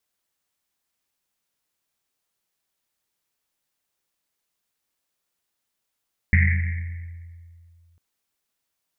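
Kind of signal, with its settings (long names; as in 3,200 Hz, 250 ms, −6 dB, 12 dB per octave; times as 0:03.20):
drum after Risset length 1.65 s, pitch 85 Hz, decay 2.37 s, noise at 2,000 Hz, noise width 510 Hz, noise 30%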